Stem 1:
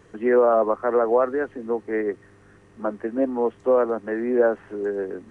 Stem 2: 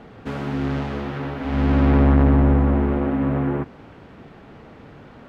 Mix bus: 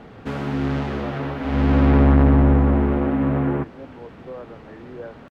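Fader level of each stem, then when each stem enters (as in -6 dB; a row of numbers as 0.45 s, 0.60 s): -17.5 dB, +1.0 dB; 0.60 s, 0.00 s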